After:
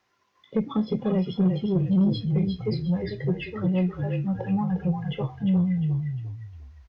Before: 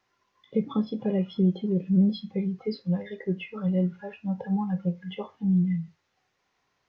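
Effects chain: frequency-shifting echo 353 ms, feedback 33%, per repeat -36 Hz, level -5.5 dB; Chebyshev shaper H 5 -23 dB, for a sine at -12.5 dBFS

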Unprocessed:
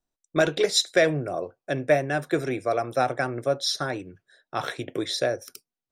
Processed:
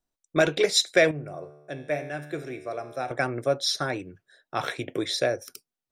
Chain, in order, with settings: 1.11–3.11 s: feedback comb 74 Hz, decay 1.1 s, harmonics all, mix 70%; dynamic bell 2.3 kHz, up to +5 dB, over -48 dBFS, Q 4.2

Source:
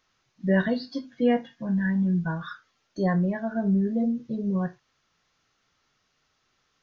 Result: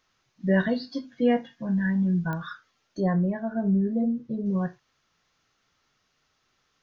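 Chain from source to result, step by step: 3.00–4.46 s: treble shelf 2.1 kHz -10.5 dB; clicks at 2.33 s, -21 dBFS

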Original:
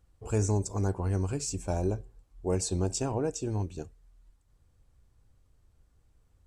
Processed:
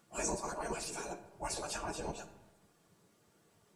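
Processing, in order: phase randomisation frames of 50 ms; spectral gate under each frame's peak -15 dB weak; in parallel at +1 dB: compression 12:1, threshold -51 dBFS, peak gain reduction 17.5 dB; on the sum: comb of notches 260 Hz; plain phase-vocoder stretch 0.58×; on a send at -10.5 dB: reverberation RT60 1.1 s, pre-delay 4 ms; on the sum: trim +6.5 dB

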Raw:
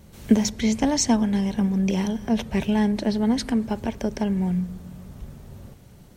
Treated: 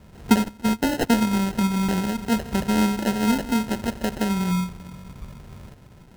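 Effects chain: Schroeder reverb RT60 1.3 s, DRR 13.5 dB; 0.44–1.16 s: gate -21 dBFS, range -15 dB; sample-and-hold 38×

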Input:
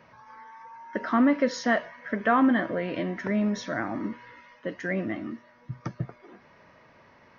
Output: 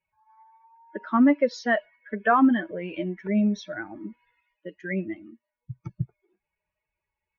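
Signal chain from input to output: expander on every frequency bin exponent 2; Bessel low-pass 3.9 kHz; trim +5 dB

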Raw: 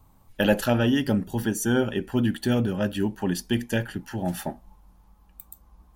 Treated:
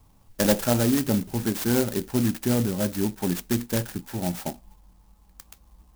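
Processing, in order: sampling jitter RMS 0.12 ms

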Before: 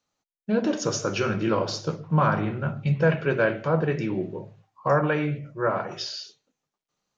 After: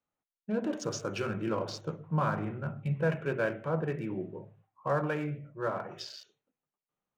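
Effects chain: local Wiener filter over 9 samples; trim -8 dB

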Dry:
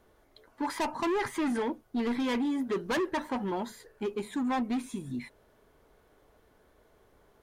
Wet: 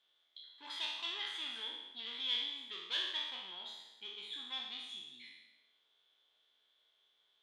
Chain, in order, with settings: spectral sustain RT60 1.00 s; band-pass filter 3.4 kHz, Q 12; flutter echo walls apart 9.8 m, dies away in 0.28 s; trim +9.5 dB

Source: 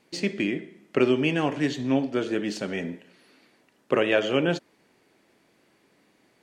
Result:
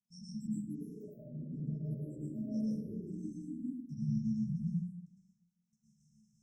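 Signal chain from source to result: frequency axis rescaled in octaves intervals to 87%; spectral selection erased 3.22–4.68 s, 280–3400 Hz; low-pass that closes with the level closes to 580 Hz, closed at -22 dBFS; gate with hold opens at -55 dBFS; de-hum 59.27 Hz, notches 28; compressor with a negative ratio -36 dBFS, ratio -1; square tremolo 2.9 Hz, depth 65%, duty 70%; FFT band-reject 230–5200 Hz; ever faster or slower copies 320 ms, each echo +6 st, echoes 3, each echo -6 dB; plate-style reverb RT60 1 s, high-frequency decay 0.4×, pre-delay 95 ms, DRR -6.5 dB; trim -6.5 dB

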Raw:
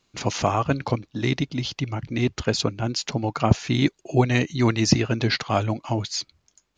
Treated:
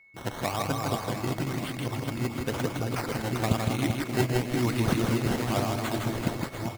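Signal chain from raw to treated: chunks repeated in reverse 700 ms, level -3 dB; decimation with a swept rate 13×, swing 100% 1 Hz; whistle 2.2 kHz -46 dBFS; on a send: reverse bouncing-ball echo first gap 160 ms, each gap 1.4×, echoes 5; on the sum: trim -8.5 dB

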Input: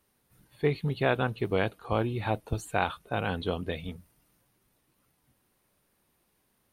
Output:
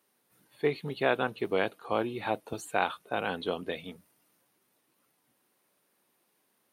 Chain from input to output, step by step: high-pass 250 Hz 12 dB/octave

